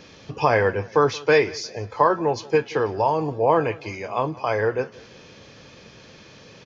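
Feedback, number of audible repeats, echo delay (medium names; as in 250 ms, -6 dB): 42%, 2, 177 ms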